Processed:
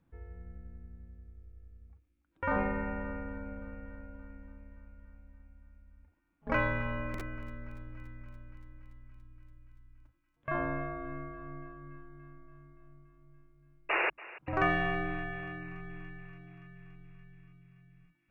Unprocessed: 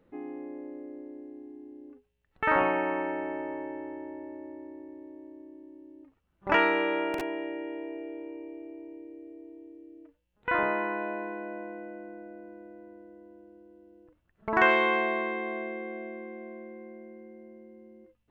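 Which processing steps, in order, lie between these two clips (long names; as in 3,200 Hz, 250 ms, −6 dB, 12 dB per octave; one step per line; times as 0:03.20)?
sound drawn into the spectrogram noise, 0:13.89–0:14.10, 660–3,200 Hz −23 dBFS
feedback echo with a high-pass in the loop 286 ms, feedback 77%, high-pass 720 Hz, level −17.5 dB
frequency shifter −350 Hz
level −6 dB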